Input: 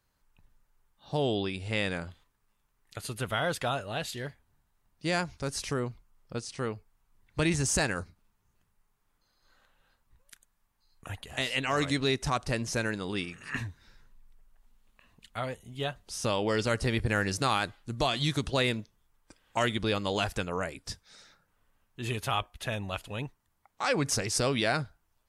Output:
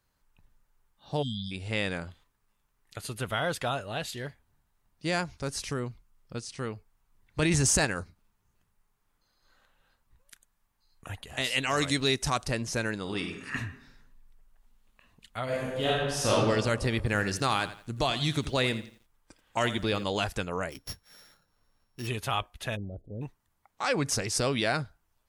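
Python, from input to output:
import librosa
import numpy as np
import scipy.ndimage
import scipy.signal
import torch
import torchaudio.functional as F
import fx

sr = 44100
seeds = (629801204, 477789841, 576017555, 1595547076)

y = fx.spec_erase(x, sr, start_s=1.23, length_s=0.28, low_hz=260.0, high_hz=3100.0)
y = fx.peak_eq(y, sr, hz=680.0, db=-3.5, octaves=2.0, at=(5.63, 6.73))
y = fx.env_flatten(y, sr, amount_pct=100, at=(7.42, 7.85))
y = fx.high_shelf(y, sr, hz=3900.0, db=8.0, at=(11.44, 12.48))
y = fx.reverb_throw(y, sr, start_s=13.01, length_s=0.56, rt60_s=0.82, drr_db=5.0)
y = fx.reverb_throw(y, sr, start_s=15.44, length_s=0.86, rt60_s=1.6, drr_db=-7.5)
y = fx.echo_crushed(y, sr, ms=85, feedback_pct=35, bits=9, wet_db=-13.5, at=(16.96, 20.04))
y = fx.sample_sort(y, sr, block=8, at=(20.7, 22.06), fade=0.02)
y = fx.cheby2_lowpass(y, sr, hz=1000.0, order=4, stop_db=40, at=(22.75, 23.21), fade=0.02)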